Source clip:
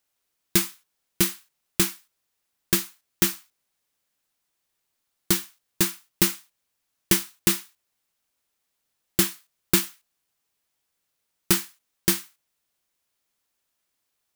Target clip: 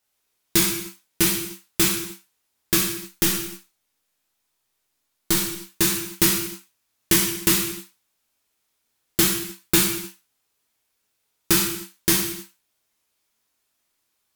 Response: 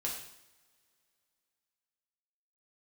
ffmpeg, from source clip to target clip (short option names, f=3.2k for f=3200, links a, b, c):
-filter_complex "[0:a]asettb=1/sr,asplit=3[a][b][c];[a]atrim=end=2.814[d];[b]atrim=start=2.81:end=5.37,asetpts=PTS-STARTPTS,afade=t=in:d=0.004:c=qsin,afade=t=out:st=2.556:d=0.004:c=qsin,aeval=exprs='if(lt(val(0),0),0.708*val(0),val(0))':c=same[e];[c]atrim=start=5.366[f];[d][e]acrossfade=d=0.004:c1=hsin:c2=qsin[g];[g][f]acrossfade=d=0.004:c1=qsin:c2=hsin[h];[1:a]atrim=start_sample=2205,afade=t=out:st=0.34:d=0.01,atrim=end_sample=15435,asetrate=39690,aresample=44100[i];[h][i]afir=irnorm=-1:irlink=0,volume=1.5dB"